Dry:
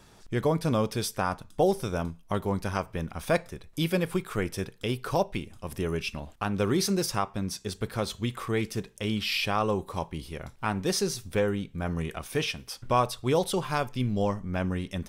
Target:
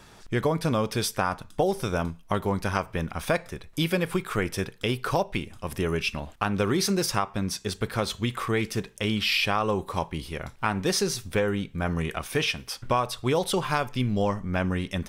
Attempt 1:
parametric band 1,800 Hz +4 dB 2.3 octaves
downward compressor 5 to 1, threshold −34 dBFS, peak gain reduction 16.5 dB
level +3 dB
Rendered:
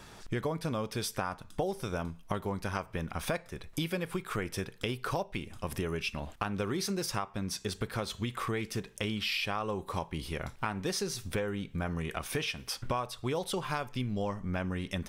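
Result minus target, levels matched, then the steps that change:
downward compressor: peak gain reduction +9 dB
change: downward compressor 5 to 1, threshold −23 dBFS, peak gain reduction 7.5 dB

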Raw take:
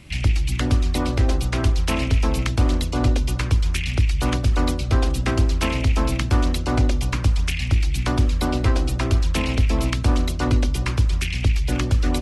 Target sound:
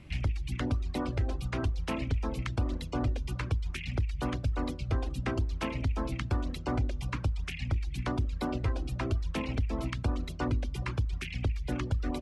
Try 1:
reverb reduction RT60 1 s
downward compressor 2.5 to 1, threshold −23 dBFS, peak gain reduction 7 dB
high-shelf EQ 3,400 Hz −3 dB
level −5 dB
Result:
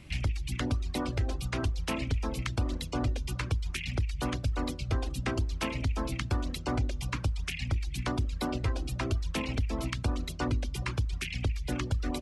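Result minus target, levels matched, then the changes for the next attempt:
8,000 Hz band +7.5 dB
change: high-shelf EQ 3,400 Hz −12.5 dB

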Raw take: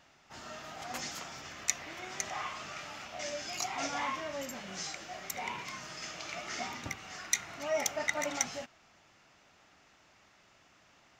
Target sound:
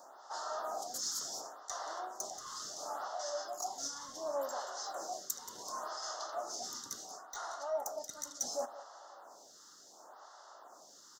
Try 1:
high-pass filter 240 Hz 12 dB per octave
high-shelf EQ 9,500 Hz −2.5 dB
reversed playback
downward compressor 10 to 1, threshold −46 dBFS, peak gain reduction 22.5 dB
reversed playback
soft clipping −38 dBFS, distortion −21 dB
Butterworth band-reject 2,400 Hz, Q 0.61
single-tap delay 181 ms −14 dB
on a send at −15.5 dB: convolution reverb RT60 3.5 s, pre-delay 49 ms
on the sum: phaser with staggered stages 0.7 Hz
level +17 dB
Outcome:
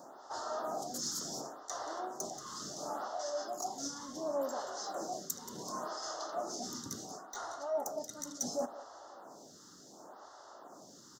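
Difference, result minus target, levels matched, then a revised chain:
250 Hz band +11.5 dB
high-pass filter 680 Hz 12 dB per octave
high-shelf EQ 9,500 Hz −2.5 dB
reversed playback
downward compressor 10 to 1, threshold −46 dBFS, peak gain reduction 22.5 dB
reversed playback
soft clipping −38 dBFS, distortion −21 dB
Butterworth band-reject 2,400 Hz, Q 0.61
single-tap delay 181 ms −14 dB
on a send at −15.5 dB: convolution reverb RT60 3.5 s, pre-delay 49 ms
on the sum: phaser with staggered stages 0.7 Hz
level +17 dB

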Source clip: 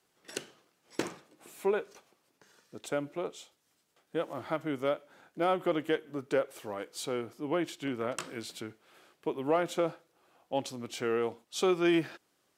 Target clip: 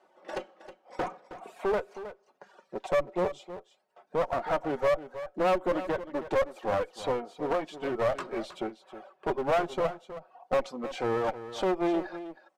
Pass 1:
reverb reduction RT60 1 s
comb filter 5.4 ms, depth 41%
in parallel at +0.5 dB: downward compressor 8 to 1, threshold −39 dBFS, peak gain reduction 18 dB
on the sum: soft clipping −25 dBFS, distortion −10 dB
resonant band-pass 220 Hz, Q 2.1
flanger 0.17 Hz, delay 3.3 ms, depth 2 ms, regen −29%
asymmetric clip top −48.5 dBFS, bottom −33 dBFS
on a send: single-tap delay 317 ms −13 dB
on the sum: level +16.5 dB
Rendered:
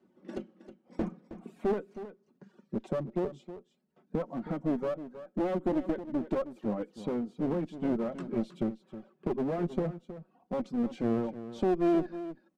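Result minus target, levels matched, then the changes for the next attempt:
250 Hz band +7.0 dB; downward compressor: peak gain reduction +6 dB
change: downward compressor 8 to 1, threshold −32 dBFS, peak gain reduction 12 dB
change: resonant band-pass 690 Hz, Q 2.1

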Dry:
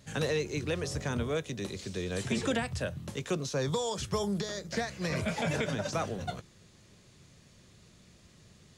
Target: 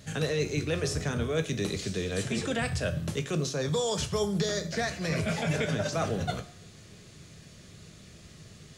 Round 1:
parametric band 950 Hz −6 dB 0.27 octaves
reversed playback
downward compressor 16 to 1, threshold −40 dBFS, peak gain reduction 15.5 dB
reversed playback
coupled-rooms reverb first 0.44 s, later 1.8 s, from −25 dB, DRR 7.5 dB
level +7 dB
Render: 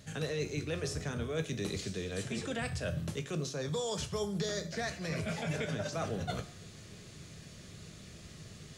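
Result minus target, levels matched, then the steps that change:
downward compressor: peak gain reduction +6.5 dB
change: downward compressor 16 to 1, threshold −33 dBFS, peak gain reduction 9 dB

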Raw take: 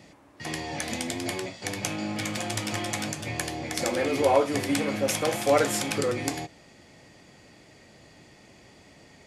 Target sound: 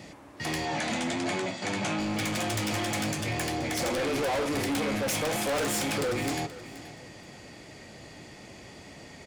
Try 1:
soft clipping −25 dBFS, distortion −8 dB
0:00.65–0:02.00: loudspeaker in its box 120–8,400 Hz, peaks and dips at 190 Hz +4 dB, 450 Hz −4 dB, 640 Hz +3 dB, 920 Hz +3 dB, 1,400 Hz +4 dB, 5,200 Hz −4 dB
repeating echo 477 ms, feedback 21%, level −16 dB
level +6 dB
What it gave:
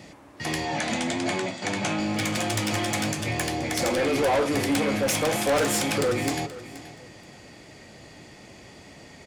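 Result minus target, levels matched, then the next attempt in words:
soft clipping: distortion −4 dB
soft clipping −32.5 dBFS, distortion −4 dB
0:00.65–0:02.00: loudspeaker in its box 120–8,400 Hz, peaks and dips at 190 Hz +4 dB, 450 Hz −4 dB, 640 Hz +3 dB, 920 Hz +3 dB, 1,400 Hz +4 dB, 5,200 Hz −4 dB
repeating echo 477 ms, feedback 21%, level −16 dB
level +6 dB

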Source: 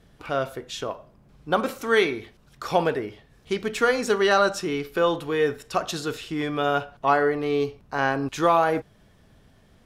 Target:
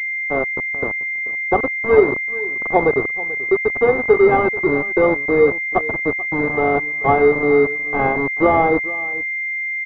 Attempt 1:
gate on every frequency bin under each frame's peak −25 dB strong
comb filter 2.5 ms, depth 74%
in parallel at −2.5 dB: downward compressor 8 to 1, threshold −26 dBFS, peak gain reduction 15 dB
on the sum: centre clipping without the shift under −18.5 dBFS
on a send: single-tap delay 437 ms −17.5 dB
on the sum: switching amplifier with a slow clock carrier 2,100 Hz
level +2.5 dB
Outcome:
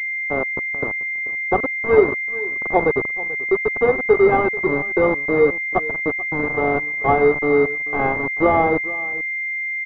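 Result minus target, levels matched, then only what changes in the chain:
downward compressor: peak gain reduction +6.5 dB
change: downward compressor 8 to 1, threshold −18.5 dBFS, peak gain reduction 8.5 dB

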